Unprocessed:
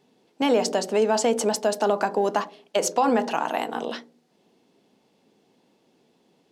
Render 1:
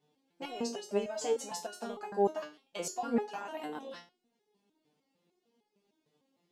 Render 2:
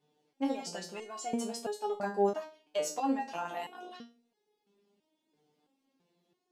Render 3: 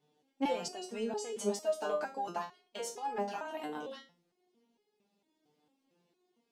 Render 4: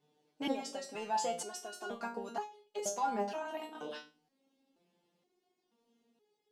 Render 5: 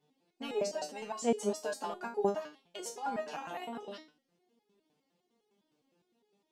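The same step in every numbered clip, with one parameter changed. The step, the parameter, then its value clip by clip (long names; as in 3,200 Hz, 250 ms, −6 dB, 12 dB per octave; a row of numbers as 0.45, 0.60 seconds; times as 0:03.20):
step-sequenced resonator, speed: 6.6, 3, 4.4, 2.1, 9.8 Hertz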